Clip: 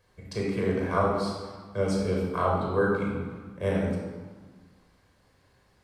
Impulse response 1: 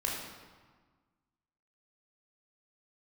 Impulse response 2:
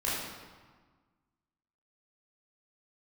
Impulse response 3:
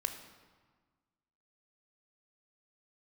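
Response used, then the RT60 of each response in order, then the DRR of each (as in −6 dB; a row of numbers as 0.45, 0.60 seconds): 1; 1.5, 1.5, 1.5 seconds; −3.0, −8.0, 6.5 decibels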